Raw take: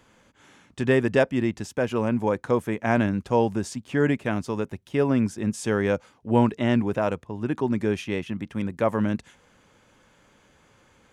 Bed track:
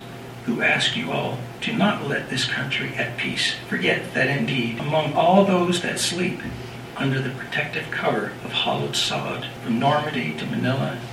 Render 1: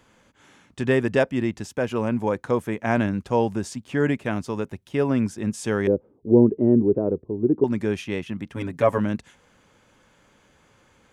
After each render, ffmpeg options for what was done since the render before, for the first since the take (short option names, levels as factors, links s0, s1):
-filter_complex "[0:a]asettb=1/sr,asplit=3[s0][s1][s2];[s0]atrim=end=5.874[s3];[s1]atrim=start=5.87:end=7.64,asetpts=PTS-STARTPTS,afade=t=in:d=0.004:c=qsin,afade=t=out:st=1.766:d=0.004:c=qsin,lowpass=f=390:t=q:w=3.6[s4];[s2]atrim=start=7.636[s5];[s3][s4]acrossfade=d=0.004:c1=hsin:c2=qsin[s6];[s6][s5]acrossfade=d=0.004:c1=qsin:c2=hsin,asettb=1/sr,asplit=3[s7][s8][s9];[s7]atrim=end=8.554[s10];[s8]atrim=start=8.55:end=8.98,asetpts=PTS-STARTPTS,afade=t=in:d=0.004:c=qsin,afade=t=out:st=0.426:d=0.004:c=qsin,aecho=1:1:7.2:0.92,atrim=end_sample=18963[s11];[s9]atrim=start=8.976[s12];[s10][s11]acrossfade=d=0.004:c1=hsin:c2=qsin[s13];[s13][s12]acrossfade=d=0.004:c1=qsin:c2=hsin"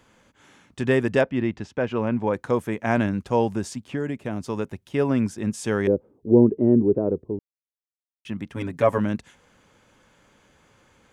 -filter_complex "[0:a]asettb=1/sr,asplit=3[s0][s1][s2];[s0]atrim=end=1.214[s3];[s1]atrim=start=1.21:end=2.34,asetpts=PTS-STARTPTS,afade=t=in:d=0.004:c=qsin,afade=t=out:st=1.126:d=0.004:c=qsin,lowpass=3700[s4];[s2]atrim=start=2.336[s5];[s3][s4]acrossfade=d=0.004:c1=hsin:c2=qsin[s6];[s6][s5]acrossfade=d=0.004:c1=qsin:c2=hsin,asettb=1/sr,asplit=3[s7][s8][s9];[s7]atrim=end=3.824[s10];[s8]atrim=start=3.82:end=4.43,asetpts=PTS-STARTPTS,afade=t=in:d=0.004:c=qsin,afade=t=out:st=0.606:d=0.004:c=qsin,acrossover=split=840|4700[s11][s12][s13];[s11]acompressor=threshold=0.0562:ratio=4[s14];[s12]acompressor=threshold=0.00891:ratio=4[s15];[s13]acompressor=threshold=0.001:ratio=4[s16];[s14][s15][s16]amix=inputs=3:normalize=0[s17];[s9]atrim=start=4.426[s18];[s10][s17]acrossfade=d=0.004:c1=hsin:c2=qsin[s19];[s19][s18]acrossfade=d=0.004:c1=qsin:c2=hsin,asplit=3[s20][s21][s22];[s20]atrim=end=7.39,asetpts=PTS-STARTPTS,afade=t=out:st=7.386:d=0.004:c=hsin[s23];[s21]atrim=start=7.39:end=8.25,asetpts=PTS-STARTPTS,volume=0[s24];[s22]atrim=start=8.25,asetpts=PTS-STARTPTS,afade=t=in:d=0.004:c=hsin[s25];[s23][s24][s25]concat=n=3:v=0:a=1"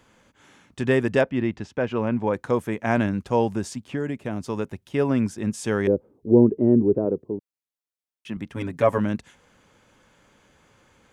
-filter_complex "[0:a]asettb=1/sr,asplit=3[s0][s1][s2];[s0]atrim=end=7.054[s3];[s1]atrim=start=7.05:end=8.37,asetpts=PTS-STARTPTS,afade=t=in:d=0.004:c=qsin,afade=t=out:st=1.316:d=0.004:c=qsin,highpass=130[s4];[s2]atrim=start=8.366[s5];[s3][s4]acrossfade=d=0.004:c1=hsin:c2=qsin[s6];[s6][s5]acrossfade=d=0.004:c1=qsin:c2=hsin"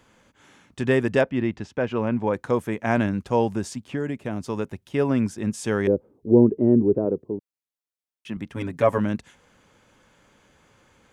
-af anull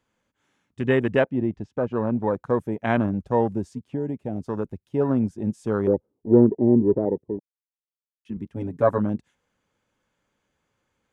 -af "afwtdn=0.0316"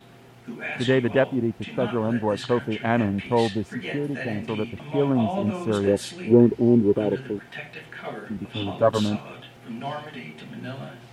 -filter_complex "[1:a]volume=0.237[s0];[0:a][s0]amix=inputs=2:normalize=0"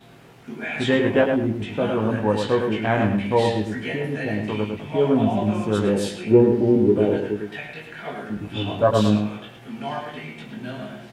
-filter_complex "[0:a]asplit=2[s0][s1];[s1]adelay=19,volume=0.631[s2];[s0][s2]amix=inputs=2:normalize=0,asplit=2[s3][s4];[s4]adelay=105,lowpass=f=3400:p=1,volume=0.562,asplit=2[s5][s6];[s6]adelay=105,lowpass=f=3400:p=1,volume=0.28,asplit=2[s7][s8];[s8]adelay=105,lowpass=f=3400:p=1,volume=0.28,asplit=2[s9][s10];[s10]adelay=105,lowpass=f=3400:p=1,volume=0.28[s11];[s3][s5][s7][s9][s11]amix=inputs=5:normalize=0"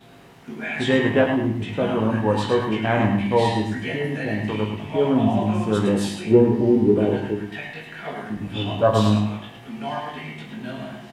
-filter_complex "[0:a]asplit=2[s0][s1];[s1]adelay=46,volume=0.282[s2];[s0][s2]amix=inputs=2:normalize=0,aecho=1:1:104:0.398"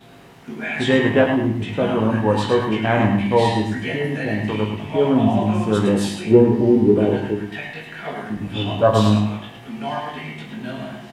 -af "volume=1.33"